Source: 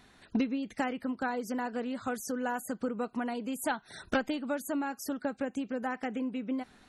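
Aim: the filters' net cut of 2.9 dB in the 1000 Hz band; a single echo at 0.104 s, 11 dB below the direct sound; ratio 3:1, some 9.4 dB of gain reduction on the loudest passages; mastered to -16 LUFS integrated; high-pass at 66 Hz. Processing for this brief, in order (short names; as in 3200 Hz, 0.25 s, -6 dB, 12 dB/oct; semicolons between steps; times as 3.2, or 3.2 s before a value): HPF 66 Hz; bell 1000 Hz -4 dB; compressor 3:1, threshold -38 dBFS; echo 0.104 s -11 dB; gain +24.5 dB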